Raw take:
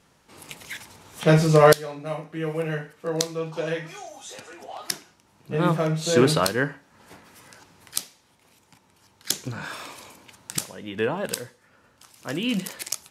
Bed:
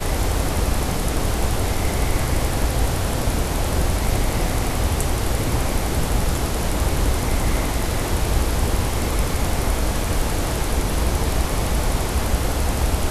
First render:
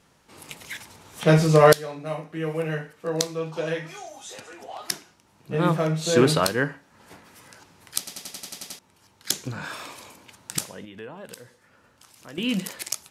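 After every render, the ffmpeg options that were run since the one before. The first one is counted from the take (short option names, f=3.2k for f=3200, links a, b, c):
-filter_complex "[0:a]asettb=1/sr,asplit=3[a][b][c];[a]atrim=end=10.854[d];[b]atrim=start=10.85:end=12.38,asetpts=PTS-STARTPTS,afade=t=in:d=0.004:c=qsin,afade=t=out:st=1.526:d=0.004:c=qsin,acompressor=threshold=-47dB:ratio=2:attack=3.2:release=140:knee=1:detection=peak[e];[c]atrim=start=12.376[f];[d][e]acrossfade=d=0.004:c1=hsin:c2=qsin[g];[g][f]acrossfade=d=0.004:c1=qsin:c2=hsin,asplit=10[h][i][j][k][l][m][n][o][p][q];[h]atrim=end=8.072[r];[i]atrim=start=7.978:end=8.072[s];[j]atrim=start=7.978:end=8.072[t];[k]atrim=start=7.978:end=8.072[u];[l]atrim=start=7.978:end=8.072[v];[m]atrim=start=7.978:end=8.072[w];[n]atrim=start=7.978:end=8.072[x];[o]atrim=start=7.978:end=8.072[y];[p]atrim=start=7.978:end=8.072[z];[q]atrim=start=8.788[aa];[r][s]acrossfade=d=0.004:c1=hsin:c2=hsin[ab];[ab][t]acrossfade=d=0.004:c1=hsin:c2=hsin[ac];[ac][u]acrossfade=d=0.004:c1=hsin:c2=hsin[ad];[ad][v]acrossfade=d=0.004:c1=hsin:c2=hsin[ae];[ae][w]acrossfade=d=0.004:c1=hsin:c2=hsin[af];[af][x]acrossfade=d=0.004:c1=hsin:c2=hsin[ag];[ag][y]acrossfade=d=0.004:c1=hsin:c2=hsin[ah];[ah][z]acrossfade=d=0.004:c1=hsin:c2=hsin[ai];[ai][aa]acrossfade=d=0.004:c1=hsin:c2=hsin"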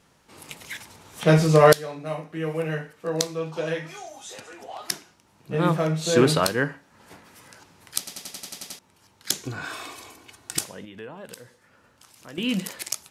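-filter_complex "[0:a]asettb=1/sr,asplit=3[a][b][c];[a]atrim=end=9.434[d];[b]atrim=start=9.43:end=10.64,asetpts=PTS-STARTPTS,afade=t=in:d=0.004:c=qsin,afade=t=out:st=1.206:d=0.004:c=qsin,aecho=1:1:2.7:0.56,atrim=end_sample=53361[e];[c]atrim=start=10.636[f];[d][e]acrossfade=d=0.004:c1=hsin:c2=qsin[g];[g][f]acrossfade=d=0.004:c1=qsin:c2=hsin"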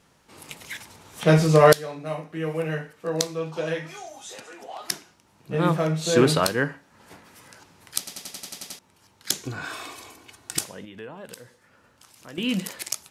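-filter_complex "[0:a]asettb=1/sr,asplit=3[a][b][c];[a]atrim=end=4.364[d];[b]atrim=start=4.36:end=4.84,asetpts=PTS-STARTPTS,afade=t=in:d=0.004:c=qsin,afade=t=out:st=0.476:d=0.004:c=qsin,highpass=150[e];[c]atrim=start=4.836[f];[d][e]acrossfade=d=0.004:c1=hsin:c2=qsin[g];[g][f]acrossfade=d=0.004:c1=qsin:c2=hsin"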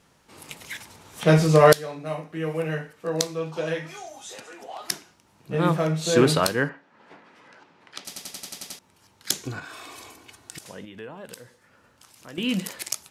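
-filter_complex "[0:a]asettb=1/sr,asplit=3[a][b][c];[a]atrim=end=6.694[d];[b]atrim=start=6.69:end=8.05,asetpts=PTS-STARTPTS,afade=t=in:d=0.004:c=qsin,afade=t=out:st=1.356:d=0.004:c=qsin,highpass=220,lowpass=3k[e];[c]atrim=start=8.046[f];[d][e]acrossfade=d=0.004:c1=hsin:c2=qsin[g];[g][f]acrossfade=d=0.004:c1=qsin:c2=hsin,asettb=1/sr,asplit=3[h][i][j];[h]atrim=end=9.594[k];[i]atrim=start=9.59:end=10.66,asetpts=PTS-STARTPTS,afade=t=in:d=0.004:c=qsin,afade=t=out:st=1.066:d=0.004:c=qsin,acompressor=threshold=-37dB:ratio=6:attack=3.2:release=140:knee=1:detection=peak[l];[j]atrim=start=10.656[m];[k][l]acrossfade=d=0.004:c1=hsin:c2=qsin[n];[n][m]acrossfade=d=0.004:c1=qsin:c2=hsin"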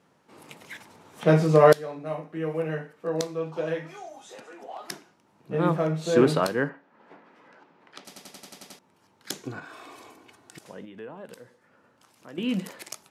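-af "highpass=160,highshelf=f=2.2k:g=-11.5"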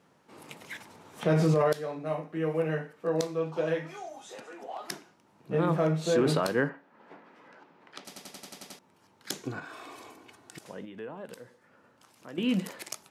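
-af "alimiter=limit=-16dB:level=0:latency=1:release=32"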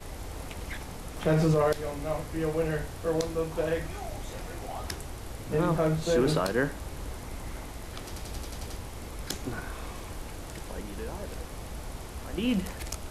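-filter_complex "[1:a]volume=-18.5dB[a];[0:a][a]amix=inputs=2:normalize=0"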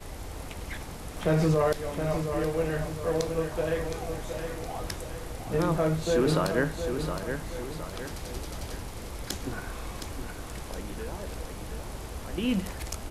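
-af "aecho=1:1:716|1432|2148|2864|3580:0.422|0.19|0.0854|0.0384|0.0173"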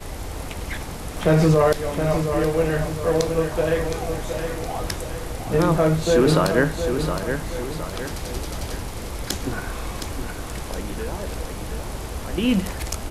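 -af "volume=7.5dB"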